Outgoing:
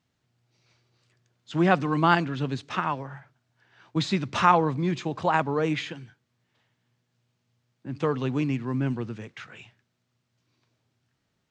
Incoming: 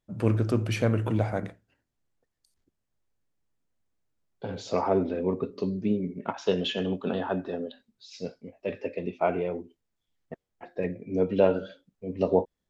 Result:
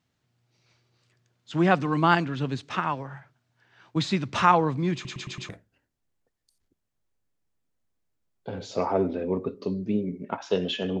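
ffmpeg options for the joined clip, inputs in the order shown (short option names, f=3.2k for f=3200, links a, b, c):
-filter_complex "[0:a]apad=whole_dur=11,atrim=end=11,asplit=5[a][b][c][d][e];[a]atrim=end=5.052[f];[b]atrim=start=4.938:end=5.052[g];[c]atrim=start=4.938:end=5.052[h];[d]atrim=start=4.938:end=5.052[i];[e]atrim=start=4.938:end=5.052[j];[1:a]atrim=start=1.448:end=6.96[k];[f][g]acrossfade=d=0.004:c1=hsin:c2=hsin[l];[l][h]acrossfade=d=0.004:c1=hsin:c2=hsin[m];[m][i]acrossfade=d=0.004:c1=hsin:c2=hsin[n];[n][j]acrossfade=d=0.004:c1=hsin:c2=hsin[o];[o][k]acrossfade=d=0.004:c1=hsin:c2=hsin"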